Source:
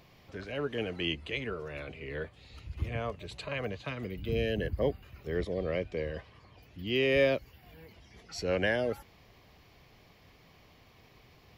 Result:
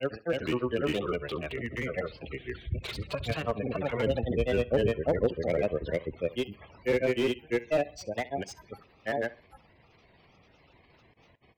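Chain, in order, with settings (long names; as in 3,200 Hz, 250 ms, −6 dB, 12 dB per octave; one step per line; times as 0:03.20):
gate on every frequency bin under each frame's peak −20 dB strong
low-shelf EQ 120 Hz −6 dB
speech leveller within 4 dB 2 s
granular cloud, grains 20 per second, spray 559 ms, pitch spread up and down by 3 semitones
tape delay 66 ms, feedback 32%, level −19 dB, low-pass 4,800 Hz
slew-rate limiting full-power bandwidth 29 Hz
level +5.5 dB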